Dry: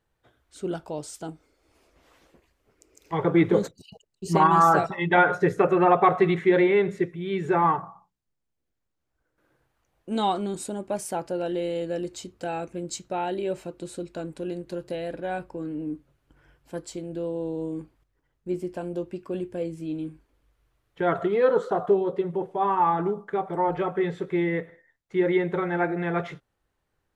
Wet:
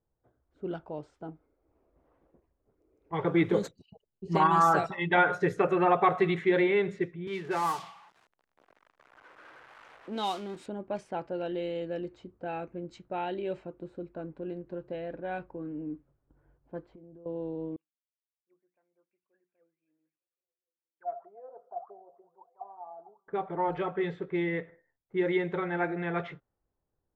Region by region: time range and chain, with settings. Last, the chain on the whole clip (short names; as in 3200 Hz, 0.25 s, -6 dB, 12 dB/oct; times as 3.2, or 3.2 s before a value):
7.27–10.66 switching spikes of -26 dBFS + low shelf 250 Hz -9 dB + three-band squash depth 40%
16.84–17.26 LPF 3600 Hz + compressor 16:1, threshold -42 dBFS
17.76–23.28 notches 60/120/180/240/300 Hz + auto-wah 700–4900 Hz, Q 20, down, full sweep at -21.5 dBFS + delay with a stepping band-pass 0.178 s, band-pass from 5400 Hz, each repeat -0.7 oct, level -12 dB
whole clip: dynamic EQ 3100 Hz, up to +4 dB, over -41 dBFS, Q 0.72; low-pass opened by the level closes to 800 Hz, open at -18 dBFS; gain -5.5 dB